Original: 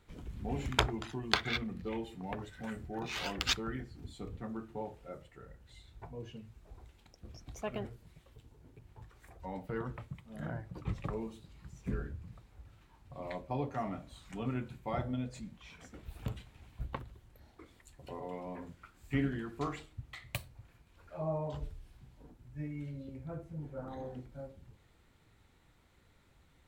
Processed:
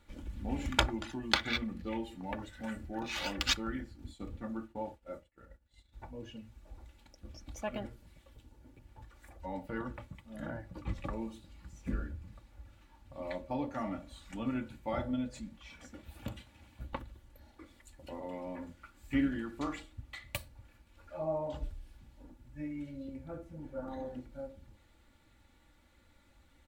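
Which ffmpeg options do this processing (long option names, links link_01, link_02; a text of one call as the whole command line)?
ffmpeg -i in.wav -filter_complex "[0:a]asplit=3[link_01][link_02][link_03];[link_01]afade=type=out:start_time=3.92:duration=0.02[link_04];[link_02]agate=range=-33dB:threshold=-48dB:ratio=3:release=100:detection=peak,afade=type=in:start_time=3.92:duration=0.02,afade=type=out:start_time=5.92:duration=0.02[link_05];[link_03]afade=type=in:start_time=5.92:duration=0.02[link_06];[link_04][link_05][link_06]amix=inputs=3:normalize=0,asettb=1/sr,asplit=3[link_07][link_08][link_09];[link_07]atrim=end=15.954[link_10];[link_08]atrim=start=15.95:end=16.93,asetpts=PTS-STARTPTS,afade=type=in:duration=0.004:curve=qsin,afade=type=out:start_time=0.976:duration=0.004:curve=qsin,highpass=78[link_11];[link_09]atrim=start=16.926[link_12];[link_10][link_11]acrossfade=duration=0.004:curve1=hsin:curve2=qsin[link_13];[link_13][link_12]acrossfade=duration=0.004:curve1=qsin:curve2=hsin,equalizer=frequency=390:width=7.4:gain=-4,bandreject=frequency=1100:width=25,aecho=1:1:3.5:0.62" out.wav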